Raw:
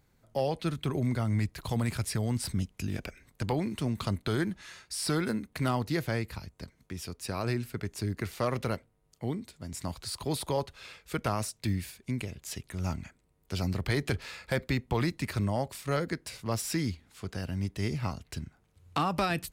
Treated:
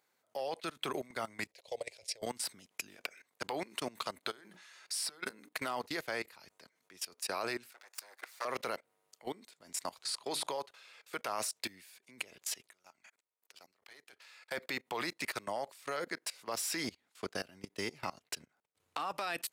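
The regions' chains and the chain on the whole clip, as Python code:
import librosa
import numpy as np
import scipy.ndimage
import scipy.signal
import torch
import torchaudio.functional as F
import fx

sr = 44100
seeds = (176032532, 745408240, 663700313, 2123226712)

y = fx.chain(x, sr, fx.curve_eq(hz=(100.0, 180.0, 270.0, 530.0, 1300.0, 2200.0, 3300.0, 5400.0, 15000.0), db=(0, -19, -17, 10, -22, 0, -1, 3, -14)),
    fx.level_steps(step_db=12), at=(1.51, 2.22))
y = fx.chain(y, sr, fx.over_compress(threshold_db=-35.0, ratio=-1.0),
    fx.hum_notches(base_hz=60, count=8), at=(4.3, 5.53))
y = fx.chain(y, sr, fx.lower_of_two(delay_ms=8.4),
    fx.highpass(hz=800.0, slope=12),
    fx.peak_eq(hz=3000.0, db=-5.5, octaves=0.27), at=(7.71, 8.45))
y = fx.chain(y, sr, fx.lowpass(hz=9900.0, slope=12),
    fx.hum_notches(base_hz=50, count=7), at=(10.02, 10.5))
y = fx.chain(y, sr, fx.low_shelf(hz=430.0, db=-11.5),
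    fx.level_steps(step_db=19),
    fx.tube_stage(drive_db=30.0, bias=0.65), at=(12.71, 14.51))
y = fx.chain(y, sr, fx.low_shelf(hz=270.0, db=6.5),
    fx.transient(attack_db=4, sustain_db=-8), at=(16.84, 18.97))
y = scipy.signal.sosfilt(scipy.signal.butter(2, 550.0, 'highpass', fs=sr, output='sos'), y)
y = fx.level_steps(y, sr, step_db=21)
y = y * librosa.db_to_amplitude(5.5)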